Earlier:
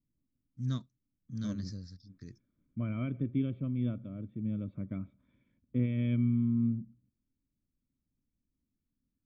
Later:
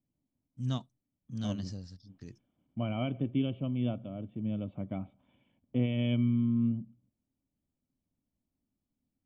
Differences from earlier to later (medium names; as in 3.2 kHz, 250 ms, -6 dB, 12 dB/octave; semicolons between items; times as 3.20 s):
second voice: add high-pass 67 Hz; master: remove static phaser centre 2.9 kHz, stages 6